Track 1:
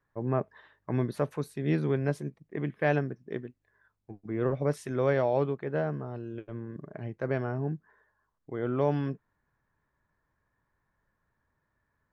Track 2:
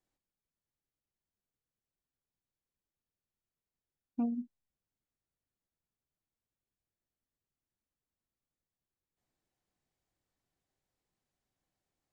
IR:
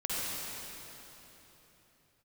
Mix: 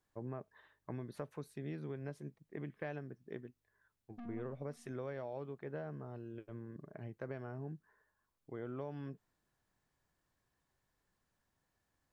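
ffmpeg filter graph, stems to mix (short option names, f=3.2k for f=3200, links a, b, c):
-filter_complex "[0:a]acompressor=threshold=-31dB:ratio=6,volume=-8.5dB[a];[1:a]acompressor=threshold=-42dB:ratio=4,aeval=exprs='(tanh(316*val(0)+0.4)-tanh(0.4))/316':c=same,volume=2.5dB,asplit=2[b][c];[c]volume=-17dB[d];[2:a]atrim=start_sample=2205[e];[d][e]afir=irnorm=-1:irlink=0[f];[a][b][f]amix=inputs=3:normalize=0"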